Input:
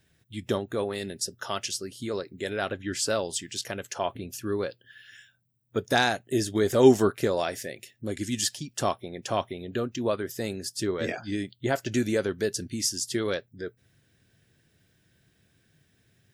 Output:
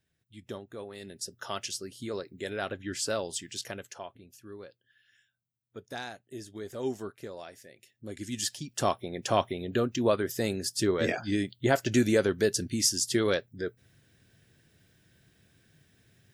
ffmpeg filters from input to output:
ffmpeg -i in.wav -af "volume=14dB,afade=type=in:start_time=0.91:duration=0.58:silence=0.375837,afade=type=out:start_time=3.68:duration=0.41:silence=0.251189,afade=type=in:start_time=7.69:duration=0.59:silence=0.334965,afade=type=in:start_time=8.28:duration=0.97:silence=0.375837" out.wav

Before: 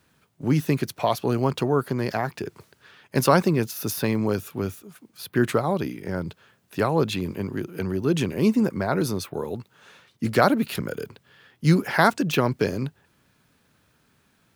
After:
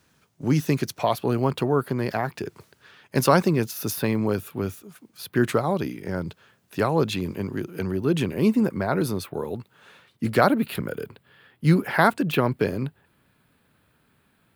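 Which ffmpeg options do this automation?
ffmpeg -i in.wav -af "asetnsamples=nb_out_samples=441:pad=0,asendcmd='1.03 equalizer g -6.5;2.36 equalizer g 0;3.95 equalizer g -6.5;4.67 equalizer g 0;7.91 equalizer g -6.5;10.47 equalizer g -12.5',equalizer=frequency=6000:width_type=o:width=0.66:gain=4.5" out.wav

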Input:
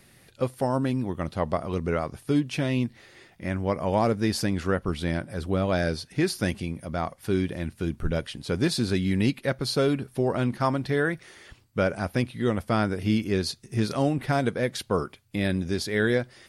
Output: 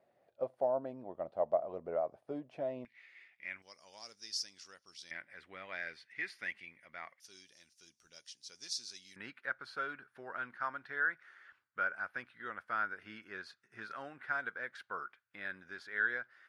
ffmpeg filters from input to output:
ffmpeg -i in.wav -af "asetnsamples=nb_out_samples=441:pad=0,asendcmd='2.85 bandpass f 2200;3.62 bandpass f 5500;5.11 bandpass f 2000;7.2 bandpass f 5800;9.16 bandpass f 1500',bandpass=frequency=640:width_type=q:width=5.4:csg=0" out.wav

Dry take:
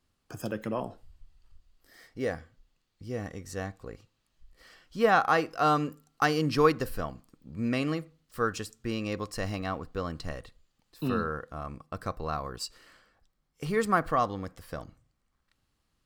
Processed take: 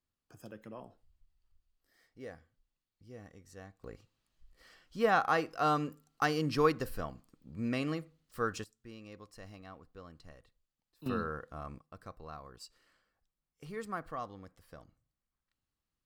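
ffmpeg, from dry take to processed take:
ffmpeg -i in.wav -af "asetnsamples=nb_out_samples=441:pad=0,asendcmd='3.84 volume volume -5dB;8.64 volume volume -17.5dB;11.06 volume volume -5.5dB;11.79 volume volume -14dB',volume=-15dB" out.wav

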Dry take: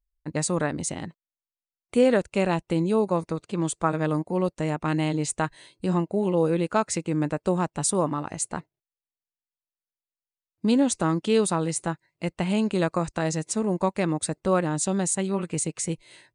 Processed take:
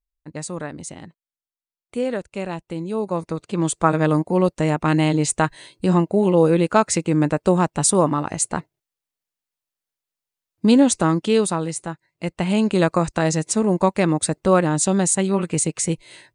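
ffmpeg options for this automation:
ffmpeg -i in.wav -af "volume=15dB,afade=type=in:start_time=2.85:duration=1.05:silence=0.266073,afade=type=out:start_time=10.81:duration=1.07:silence=0.375837,afade=type=in:start_time=11.88:duration=0.94:silence=0.398107" out.wav

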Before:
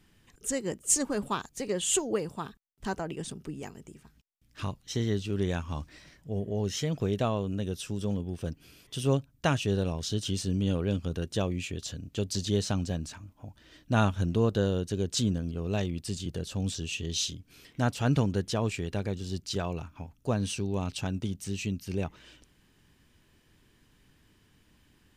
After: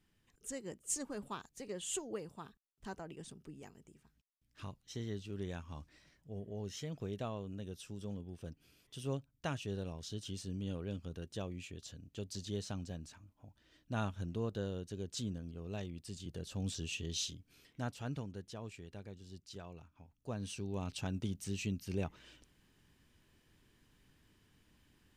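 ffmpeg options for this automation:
ffmpeg -i in.wav -af "volume=6dB,afade=type=in:start_time=16.11:duration=0.74:silence=0.473151,afade=type=out:start_time=16.85:duration=1.38:silence=0.266073,afade=type=in:start_time=20.03:duration=1.25:silence=0.251189" out.wav

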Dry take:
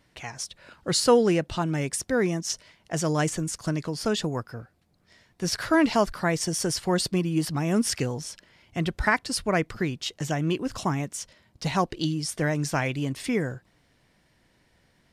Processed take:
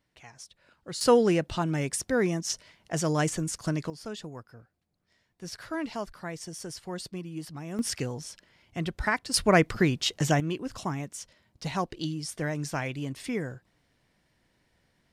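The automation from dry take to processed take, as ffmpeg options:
ffmpeg -i in.wav -af "asetnsamples=nb_out_samples=441:pad=0,asendcmd='1.01 volume volume -1.5dB;3.9 volume volume -12.5dB;7.79 volume volume -4.5dB;9.34 volume volume 4dB;10.4 volume volume -5.5dB',volume=-12.5dB" out.wav

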